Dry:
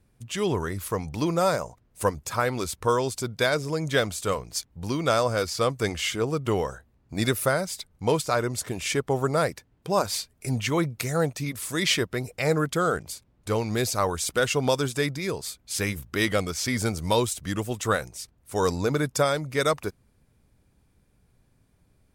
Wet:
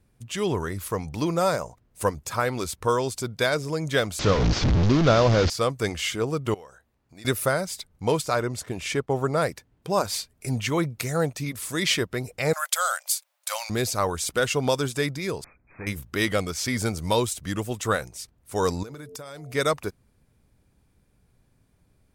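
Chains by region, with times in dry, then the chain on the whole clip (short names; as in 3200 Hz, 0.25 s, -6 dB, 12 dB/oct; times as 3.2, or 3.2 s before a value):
4.19–5.5 delta modulation 32 kbps, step -22 dBFS + low shelf 440 Hz +10.5 dB
6.54–7.25 low shelf 330 Hz -10 dB + compressor 2:1, threshold -54 dBFS
8.4–9.42 expander -37 dBFS + high shelf 6000 Hz -7 dB
12.53–13.7 brick-wall FIR high-pass 520 Hz + tilt +4 dB/oct
15.44–15.87 tube stage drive 33 dB, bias 0.3 + brick-wall FIR low-pass 2600 Hz
18.83–19.54 high shelf 6900 Hz +5.5 dB + de-hum 88.58 Hz, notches 8 + compressor 20:1, threshold -35 dBFS
whole clip: dry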